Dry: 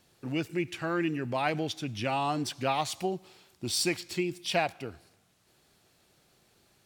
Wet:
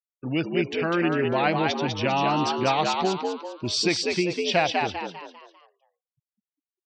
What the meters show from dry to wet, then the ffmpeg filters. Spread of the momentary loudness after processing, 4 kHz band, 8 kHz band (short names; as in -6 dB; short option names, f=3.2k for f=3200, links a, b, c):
8 LU, +7.0 dB, +1.5 dB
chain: -filter_complex "[0:a]lowpass=f=6.1k:w=0.5412,lowpass=f=6.1k:w=1.3066,afftfilt=real='re*gte(hypot(re,im),0.00501)':imag='im*gte(hypot(re,im),0.00501)':win_size=1024:overlap=0.75,asplit=6[a][b][c][d][e][f];[b]adelay=199,afreqshift=80,volume=-3.5dB[g];[c]adelay=398,afreqshift=160,volume=-11.5dB[h];[d]adelay=597,afreqshift=240,volume=-19.4dB[i];[e]adelay=796,afreqshift=320,volume=-27.4dB[j];[f]adelay=995,afreqshift=400,volume=-35.3dB[k];[a][g][h][i][j][k]amix=inputs=6:normalize=0,volume=5.5dB"